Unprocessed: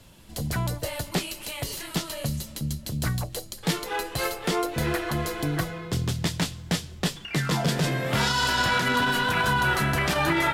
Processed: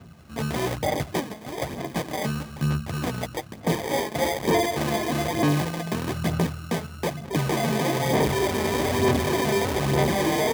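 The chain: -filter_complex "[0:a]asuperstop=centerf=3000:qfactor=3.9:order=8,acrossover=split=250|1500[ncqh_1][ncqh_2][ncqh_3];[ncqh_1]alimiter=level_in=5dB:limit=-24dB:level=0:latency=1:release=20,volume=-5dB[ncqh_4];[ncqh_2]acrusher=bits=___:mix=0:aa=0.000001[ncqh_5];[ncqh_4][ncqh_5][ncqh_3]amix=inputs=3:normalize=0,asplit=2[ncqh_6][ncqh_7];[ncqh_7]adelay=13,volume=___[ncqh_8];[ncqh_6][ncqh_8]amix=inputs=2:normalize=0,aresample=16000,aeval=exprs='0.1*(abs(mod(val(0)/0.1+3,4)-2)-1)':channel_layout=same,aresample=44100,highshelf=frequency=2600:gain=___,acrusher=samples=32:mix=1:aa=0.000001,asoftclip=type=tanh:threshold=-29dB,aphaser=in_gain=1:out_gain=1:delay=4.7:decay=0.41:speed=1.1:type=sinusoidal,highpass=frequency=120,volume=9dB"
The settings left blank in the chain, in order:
5, -7dB, -7.5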